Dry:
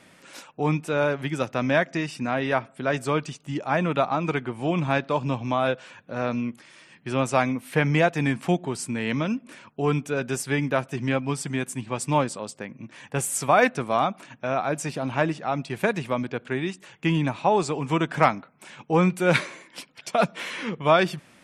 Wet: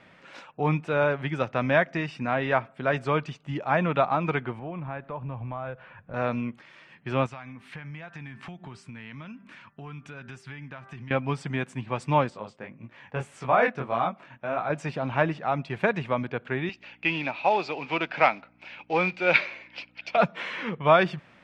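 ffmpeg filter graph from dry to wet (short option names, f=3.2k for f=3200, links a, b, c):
-filter_complex "[0:a]asettb=1/sr,asplit=3[a][b][c];[a]atrim=end=4.594[d];[b]atrim=start=4.59:end=6.14,asetpts=PTS-STARTPTS,afade=t=in:d=0.004:c=qsin,afade=t=out:st=1.546:d=0.004:c=qsin,lowpass=1.9k,acompressor=threshold=-38dB:ratio=2:attack=3.2:release=140:knee=1:detection=peak,asubboost=boost=10:cutoff=120[e];[c]atrim=start=6.136[f];[d][e]acrossfade=d=0.004:c1=hsin:c2=qsin[g];[g][f]acrossfade=d=0.004:c1=qsin:c2=hsin,asettb=1/sr,asplit=3[h][i][j];[h]atrim=end=7.264[k];[i]atrim=start=7.26:end=11.11,asetpts=PTS-STARTPTS,afade=t=in:d=0.004:c=qsin,afade=t=out:st=3.846:d=0.004:c=qsin,equalizer=f=490:t=o:w=1.3:g=-10.5,bandreject=f=196.8:t=h:w=4,bandreject=f=393.6:t=h:w=4,bandreject=f=590.4:t=h:w=4,bandreject=f=787.2:t=h:w=4,bandreject=f=984:t=h:w=4,bandreject=f=1.1808k:t=h:w=4,bandreject=f=1.3776k:t=h:w=4,bandreject=f=1.5744k:t=h:w=4,bandreject=f=1.7712k:t=h:w=4,bandreject=f=1.968k:t=h:w=4,acompressor=threshold=-36dB:ratio=8:attack=3.2:release=140:knee=1:detection=peak[l];[j]atrim=start=11.106[m];[k][l]acrossfade=d=0.004:c1=hsin:c2=qsin[n];[n][m]acrossfade=d=0.004:c1=qsin:c2=hsin,asettb=1/sr,asplit=3[o][p][q];[o]atrim=end=12.304[r];[p]atrim=start=12.3:end=14.7,asetpts=PTS-STARTPTS,afade=t=in:d=0.004:c=qsin,afade=t=out:st=2.396:d=0.004:c=qsin,highshelf=f=5.7k:g=-8,flanger=delay=16.5:depth=6.9:speed=1.7[s];[q]atrim=start=14.696[t];[r][s]acrossfade=d=0.004:c1=hsin:c2=qsin[u];[u][t]acrossfade=d=0.004:c1=qsin:c2=hsin,asettb=1/sr,asplit=3[v][w][x];[v]atrim=end=16.694[y];[w]atrim=start=16.69:end=20.17,asetpts=PTS-STARTPTS,afade=t=in:d=0.004:c=qsin,afade=t=out:st=3.476:d=0.004:c=qsin,acrusher=bits=5:mode=log:mix=0:aa=0.000001,aeval=exprs='val(0)+0.00631*(sin(2*PI*60*n/s)+sin(2*PI*2*60*n/s)/2+sin(2*PI*3*60*n/s)/3+sin(2*PI*4*60*n/s)/4+sin(2*PI*5*60*n/s)/5)':c=same,highpass=330,equalizer=f=430:t=q:w=4:g=-4,equalizer=f=1.1k:t=q:w=4:g=-7,equalizer=f=1.7k:t=q:w=4:g=-3,equalizer=f=2.5k:t=q:w=4:g=9,equalizer=f=4.7k:t=q:w=4:g=6,lowpass=f=5.9k:w=0.5412,lowpass=f=5.9k:w=1.3066[z];[x]atrim=start=20.166[aa];[y][z]acrossfade=d=0.004:c1=hsin:c2=qsin[ab];[ab][aa]acrossfade=d=0.004:c1=qsin:c2=hsin,lowpass=2.9k,equalizer=f=290:w=1.2:g=-5,volume=1dB"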